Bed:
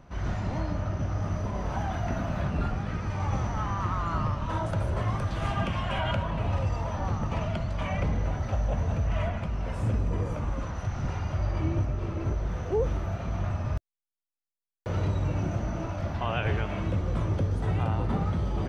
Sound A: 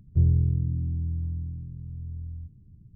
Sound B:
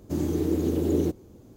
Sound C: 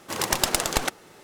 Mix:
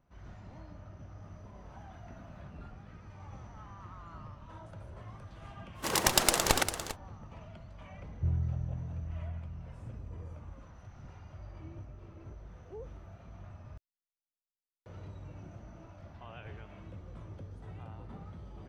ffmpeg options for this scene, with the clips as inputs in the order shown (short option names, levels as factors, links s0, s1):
-filter_complex "[0:a]volume=0.112[s0];[3:a]aecho=1:1:399:0.335[s1];[1:a]bandreject=f=270:w=5.3[s2];[s1]atrim=end=1.23,asetpts=PTS-STARTPTS,volume=0.75,afade=t=in:d=0.1,afade=t=out:st=1.13:d=0.1,adelay=5740[s3];[s2]atrim=end=2.95,asetpts=PTS-STARTPTS,volume=0.299,afade=t=in:d=0.004:c=hsin,afade=t=out:st=2.946:d=0.004:c=hsin,adelay=8060[s4];[s0][s3][s4]amix=inputs=3:normalize=0"